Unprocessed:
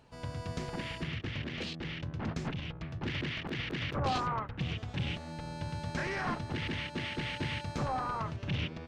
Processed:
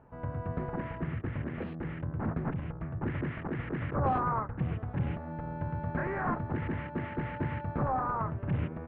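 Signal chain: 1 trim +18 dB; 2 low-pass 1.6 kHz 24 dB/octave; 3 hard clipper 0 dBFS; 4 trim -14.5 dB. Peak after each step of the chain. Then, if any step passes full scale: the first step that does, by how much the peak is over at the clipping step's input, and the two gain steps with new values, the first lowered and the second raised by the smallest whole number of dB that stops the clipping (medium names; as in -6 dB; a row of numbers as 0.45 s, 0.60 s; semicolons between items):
-4.0 dBFS, -4.0 dBFS, -4.0 dBFS, -18.5 dBFS; nothing clips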